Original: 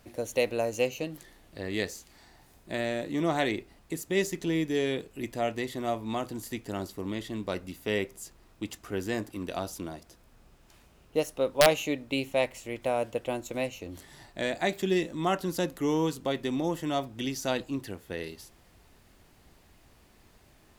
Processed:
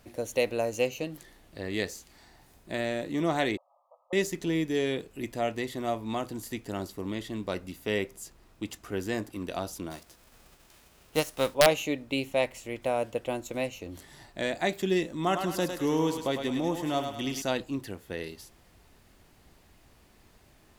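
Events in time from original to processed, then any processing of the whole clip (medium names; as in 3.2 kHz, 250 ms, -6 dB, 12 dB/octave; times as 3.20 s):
3.57–4.13 s: brick-wall FIR band-pass 520–1300 Hz
9.90–11.53 s: formants flattened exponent 0.6
15.13–17.42 s: thinning echo 104 ms, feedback 51%, level -5.5 dB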